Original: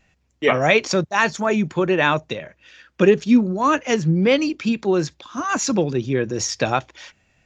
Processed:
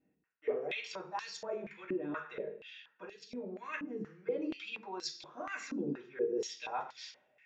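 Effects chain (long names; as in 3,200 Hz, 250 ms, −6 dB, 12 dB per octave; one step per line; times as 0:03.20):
parametric band 470 Hz +12 dB 0.22 octaves
reversed playback
downward compressor 6 to 1, threshold −26 dBFS, peak gain reduction 20 dB
reversed playback
convolution reverb RT60 0.55 s, pre-delay 3 ms, DRR −5 dB
band-pass on a step sequencer 4.2 Hz 280–4,700 Hz
level −4.5 dB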